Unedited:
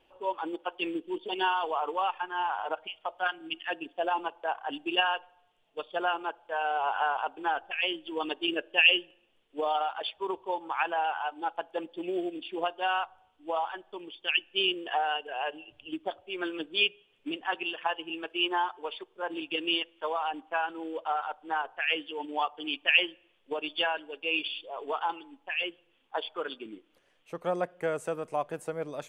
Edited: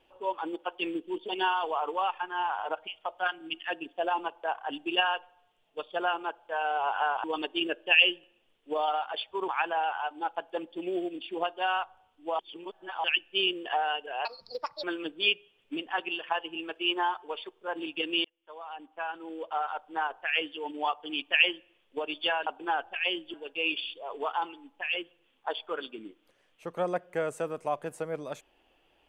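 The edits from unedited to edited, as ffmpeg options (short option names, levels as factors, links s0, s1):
-filter_complex "[0:a]asplit=10[s0][s1][s2][s3][s4][s5][s6][s7][s8][s9];[s0]atrim=end=7.242[s10];[s1]atrim=start=8.108:end=10.352[s11];[s2]atrim=start=10.688:end=13.602[s12];[s3]atrim=start=13.598:end=14.252,asetpts=PTS-STARTPTS,areverse[s13];[s4]atrim=start=14.248:end=15.464[s14];[s5]atrim=start=15.46:end=16.38,asetpts=PTS-STARTPTS,asetrate=69237,aresample=44100,atrim=end_sample=25842,asetpts=PTS-STARTPTS[s15];[s6]atrim=start=16.376:end=19.79,asetpts=PTS-STARTPTS,afade=t=out:st=3.41:d=0.004:c=hsin[s16];[s7]atrim=start=19.79:end=24.012,asetpts=PTS-STARTPTS,afade=t=in:d=1.48[s17];[s8]atrim=start=7.238:end=8.112[s18];[s9]atrim=start=24.008[s19];[s10][s11]acrossfade=d=0.004:c1=hsin:c2=hsin[s20];[s20][s12]acrossfade=d=0.004:c1=hsin:c2=hsin[s21];[s21][s13]acrossfade=d=0.004:c1=hsin:c2=hsin[s22];[s22][s14]acrossfade=d=0.004:c1=hsin:c2=hsin[s23];[s23][s15]acrossfade=d=0.004:c1=hsin:c2=hsin[s24];[s16][s17]concat=n=2:v=0:a=1[s25];[s24][s25]acrossfade=d=0.004:c1=hsin:c2=hsin[s26];[s26][s18]acrossfade=d=0.004:c1=hsin:c2=hsin[s27];[s27][s19]acrossfade=d=0.004:c1=hsin:c2=hsin"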